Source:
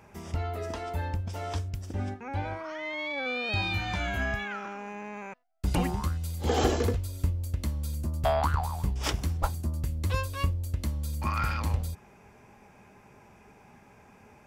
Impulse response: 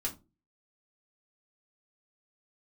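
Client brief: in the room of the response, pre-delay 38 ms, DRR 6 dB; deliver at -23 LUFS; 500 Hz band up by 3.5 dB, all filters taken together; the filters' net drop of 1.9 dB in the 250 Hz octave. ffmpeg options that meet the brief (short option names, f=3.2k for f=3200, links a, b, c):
-filter_complex "[0:a]equalizer=f=250:t=o:g=-4.5,equalizer=f=500:t=o:g=5.5,asplit=2[a][b];[1:a]atrim=start_sample=2205,adelay=38[c];[b][c]afir=irnorm=-1:irlink=0,volume=-8dB[d];[a][d]amix=inputs=2:normalize=0,volume=6.5dB"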